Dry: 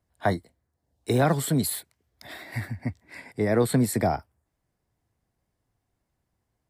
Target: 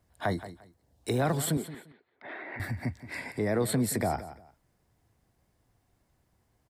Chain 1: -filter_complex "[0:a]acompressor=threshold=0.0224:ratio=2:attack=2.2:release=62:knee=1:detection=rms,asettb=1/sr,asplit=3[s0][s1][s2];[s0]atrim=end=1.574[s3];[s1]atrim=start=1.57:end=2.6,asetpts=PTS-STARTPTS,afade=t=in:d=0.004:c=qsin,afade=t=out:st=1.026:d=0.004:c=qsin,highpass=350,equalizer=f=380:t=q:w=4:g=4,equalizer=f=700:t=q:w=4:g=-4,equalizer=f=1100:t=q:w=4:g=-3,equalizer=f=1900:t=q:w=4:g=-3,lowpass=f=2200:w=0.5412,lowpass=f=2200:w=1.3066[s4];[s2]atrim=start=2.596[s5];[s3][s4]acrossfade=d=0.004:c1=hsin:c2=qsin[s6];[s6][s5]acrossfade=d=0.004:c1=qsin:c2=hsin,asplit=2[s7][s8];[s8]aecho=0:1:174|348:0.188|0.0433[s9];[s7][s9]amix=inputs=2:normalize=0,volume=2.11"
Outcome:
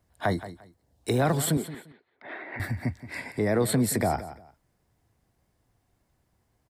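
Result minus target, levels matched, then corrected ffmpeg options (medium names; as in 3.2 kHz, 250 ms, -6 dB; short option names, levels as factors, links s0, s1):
compression: peak gain reduction -3.5 dB
-filter_complex "[0:a]acompressor=threshold=0.01:ratio=2:attack=2.2:release=62:knee=1:detection=rms,asettb=1/sr,asplit=3[s0][s1][s2];[s0]atrim=end=1.574[s3];[s1]atrim=start=1.57:end=2.6,asetpts=PTS-STARTPTS,afade=t=in:d=0.004:c=qsin,afade=t=out:st=1.026:d=0.004:c=qsin,highpass=350,equalizer=f=380:t=q:w=4:g=4,equalizer=f=700:t=q:w=4:g=-4,equalizer=f=1100:t=q:w=4:g=-3,equalizer=f=1900:t=q:w=4:g=-3,lowpass=f=2200:w=0.5412,lowpass=f=2200:w=1.3066[s4];[s2]atrim=start=2.596[s5];[s3][s4]acrossfade=d=0.004:c1=hsin:c2=qsin[s6];[s6][s5]acrossfade=d=0.004:c1=qsin:c2=hsin,asplit=2[s7][s8];[s8]aecho=0:1:174|348:0.188|0.0433[s9];[s7][s9]amix=inputs=2:normalize=0,volume=2.11"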